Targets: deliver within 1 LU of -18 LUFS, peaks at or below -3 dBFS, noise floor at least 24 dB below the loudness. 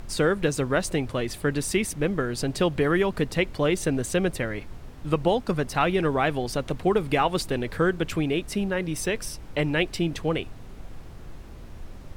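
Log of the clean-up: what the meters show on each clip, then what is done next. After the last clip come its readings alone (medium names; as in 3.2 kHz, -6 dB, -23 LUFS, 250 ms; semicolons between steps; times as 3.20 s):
noise floor -42 dBFS; noise floor target -50 dBFS; loudness -26.0 LUFS; peak level -8.5 dBFS; loudness target -18.0 LUFS
-> noise print and reduce 8 dB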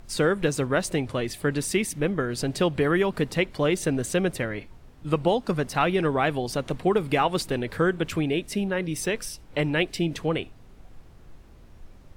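noise floor -50 dBFS; loudness -26.0 LUFS; peak level -8.5 dBFS; loudness target -18.0 LUFS
-> trim +8 dB; peak limiter -3 dBFS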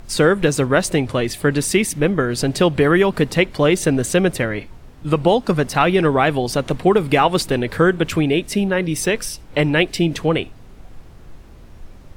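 loudness -18.0 LUFS; peak level -3.0 dBFS; noise floor -42 dBFS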